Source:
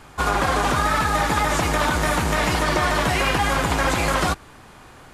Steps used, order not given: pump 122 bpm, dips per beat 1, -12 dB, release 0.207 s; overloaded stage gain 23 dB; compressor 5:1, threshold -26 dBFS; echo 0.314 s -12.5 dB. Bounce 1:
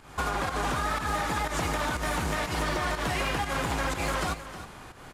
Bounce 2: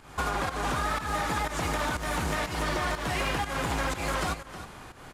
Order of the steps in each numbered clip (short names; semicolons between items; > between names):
pump > compressor > overloaded stage > echo; compressor > echo > overloaded stage > pump